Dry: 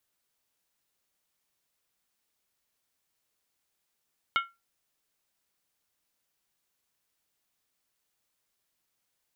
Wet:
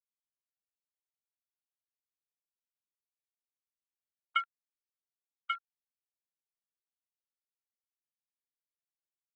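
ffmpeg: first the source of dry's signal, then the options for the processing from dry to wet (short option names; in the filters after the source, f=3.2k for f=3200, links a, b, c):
-f lavfi -i "aevalsrc='0.0944*pow(10,-3*t/0.23)*sin(2*PI*1370*t)+0.0596*pow(10,-3*t/0.182)*sin(2*PI*2183.8*t)+0.0376*pow(10,-3*t/0.157)*sin(2*PI*2926.3*t)+0.0237*pow(10,-3*t/0.152)*sin(2*PI*3145.5*t)+0.015*pow(10,-3*t/0.141)*sin(2*PI*3634.6*t)':d=0.63:s=44100"
-filter_complex "[0:a]afftfilt=real='re*gte(hypot(re,im),0.0794)':imag='im*gte(hypot(re,im),0.0794)':win_size=1024:overlap=0.75,asplit=2[a][b];[b]aecho=0:1:1138:0.631[c];[a][c]amix=inputs=2:normalize=0,afwtdn=0.00251"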